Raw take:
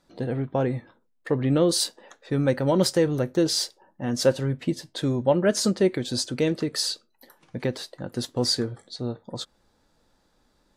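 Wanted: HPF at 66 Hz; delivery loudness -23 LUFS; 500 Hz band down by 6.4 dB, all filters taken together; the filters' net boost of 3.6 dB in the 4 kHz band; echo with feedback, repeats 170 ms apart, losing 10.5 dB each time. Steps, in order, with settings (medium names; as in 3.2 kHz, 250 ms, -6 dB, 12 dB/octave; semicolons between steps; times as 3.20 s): high-pass 66 Hz; peaking EQ 500 Hz -8 dB; peaking EQ 4 kHz +4.5 dB; feedback delay 170 ms, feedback 30%, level -10.5 dB; trim +3 dB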